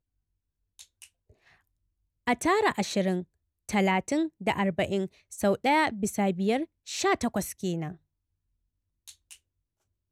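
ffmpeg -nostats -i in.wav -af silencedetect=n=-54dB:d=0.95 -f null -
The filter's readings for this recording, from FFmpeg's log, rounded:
silence_start: 7.97
silence_end: 9.08 | silence_duration: 1.11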